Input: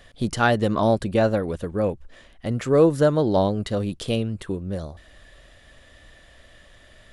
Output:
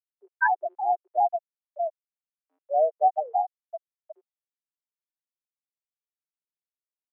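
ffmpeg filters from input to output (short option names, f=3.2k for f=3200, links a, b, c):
-af "afftfilt=real='re*gte(hypot(re,im),0.631)':imag='im*gte(hypot(re,im),0.631)':win_size=1024:overlap=0.75,highpass=f=560:t=q:w=0.5412,highpass=f=560:t=q:w=1.307,lowpass=f=3.5k:t=q:w=0.5176,lowpass=f=3.5k:t=q:w=0.7071,lowpass=f=3.5k:t=q:w=1.932,afreqshift=150,volume=2dB"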